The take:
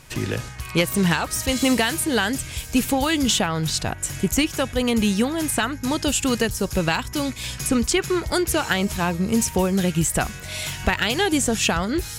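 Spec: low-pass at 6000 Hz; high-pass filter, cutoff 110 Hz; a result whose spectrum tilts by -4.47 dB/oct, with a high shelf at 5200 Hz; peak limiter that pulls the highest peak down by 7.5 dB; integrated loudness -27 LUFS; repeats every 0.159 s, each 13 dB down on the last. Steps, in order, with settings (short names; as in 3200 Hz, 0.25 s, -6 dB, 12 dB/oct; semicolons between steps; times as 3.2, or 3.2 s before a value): HPF 110 Hz; LPF 6000 Hz; high shelf 5200 Hz -3.5 dB; limiter -14 dBFS; feedback echo 0.159 s, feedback 22%, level -13 dB; gain -2.5 dB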